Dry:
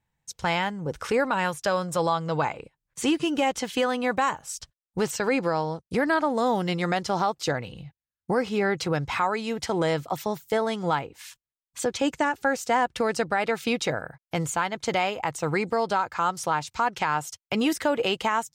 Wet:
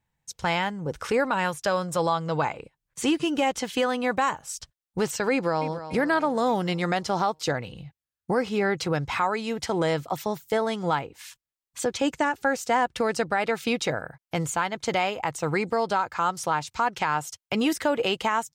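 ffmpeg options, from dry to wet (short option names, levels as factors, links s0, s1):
-filter_complex "[0:a]asplit=2[s0][s1];[s1]afade=t=in:st=5.32:d=0.01,afade=t=out:st=5.87:d=0.01,aecho=0:1:290|580|870|1160|1450|1740:0.251189|0.138154|0.0759846|0.0417915|0.0229853|0.0126419[s2];[s0][s2]amix=inputs=2:normalize=0"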